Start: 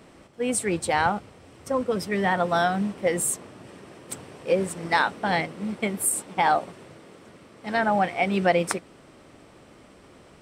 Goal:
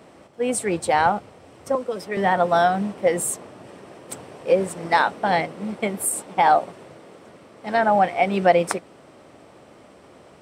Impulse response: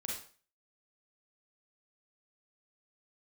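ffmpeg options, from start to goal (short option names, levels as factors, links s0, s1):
-filter_complex "[0:a]highpass=71,equalizer=f=670:t=o:w=1.4:g=6,asettb=1/sr,asplit=3[s0][s1][s2];[s0]atrim=end=1.754[s3];[s1]atrim=start=1.75:end=2.17,asetpts=PTS-STARTPTS,afade=t=in:d=0.004:c=qsin,afade=t=out:st=0.416:d=0.004:c=qsin,acrossover=split=280|3200[s4][s5][s6];[s4]acompressor=threshold=0.00708:ratio=4[s7];[s5]acompressor=threshold=0.0631:ratio=4[s8];[s6]acompressor=threshold=0.00891:ratio=4[s9];[s7][s8][s9]amix=inputs=3:normalize=0[s10];[s2]atrim=start=2.166[s11];[s3][s10]acrossfade=d=0.004:c1=hsin:c2=qsin[s12];[s12][s11]acrossfade=d=0.004:c1=qsin:c2=hsin"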